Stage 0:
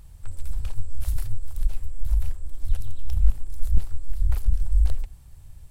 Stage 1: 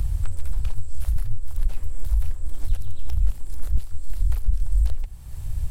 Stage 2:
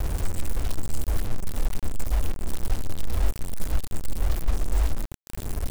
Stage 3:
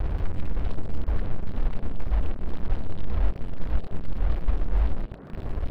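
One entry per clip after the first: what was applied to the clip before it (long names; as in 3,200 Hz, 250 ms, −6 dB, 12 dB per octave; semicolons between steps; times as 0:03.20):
multiband upward and downward compressor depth 100%
bit reduction 5 bits; level −3 dB
high-frequency loss of the air 360 metres; echo through a band-pass that steps 327 ms, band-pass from 190 Hz, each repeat 1.4 octaves, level −1.5 dB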